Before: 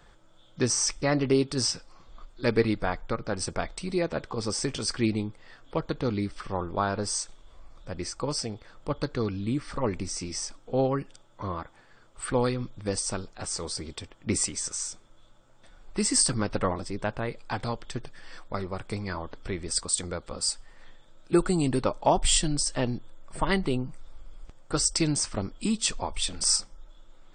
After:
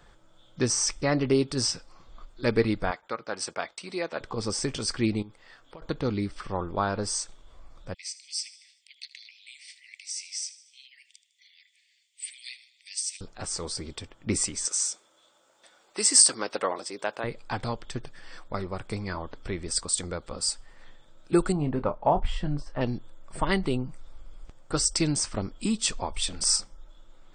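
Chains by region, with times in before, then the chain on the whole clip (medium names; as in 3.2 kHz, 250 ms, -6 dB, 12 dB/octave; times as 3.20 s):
2.91–4.21 s: expander -38 dBFS + frequency weighting A
5.22–5.82 s: bass shelf 380 Hz -8 dB + compression 8:1, threshold -41 dBFS
7.94–13.21 s: steep high-pass 2 kHz 96 dB/octave + feedback delay 77 ms, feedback 54%, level -16.5 dB
14.65–17.24 s: Chebyshev high-pass 440 Hz + treble shelf 3 kHz +8 dB
21.52–22.81 s: low-pass 1.5 kHz + peaking EQ 320 Hz -6 dB 0.6 oct + doubling 27 ms -10.5 dB
whole clip: none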